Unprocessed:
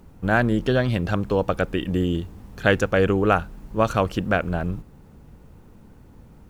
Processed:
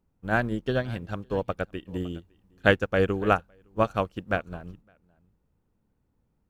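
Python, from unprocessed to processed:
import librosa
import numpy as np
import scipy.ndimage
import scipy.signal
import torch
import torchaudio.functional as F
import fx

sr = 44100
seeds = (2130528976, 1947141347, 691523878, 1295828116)

y = x + 10.0 ** (-15.5 / 20.0) * np.pad(x, (int(561 * sr / 1000.0), 0))[:len(x)]
y = fx.upward_expand(y, sr, threshold_db=-31.0, expansion=2.5)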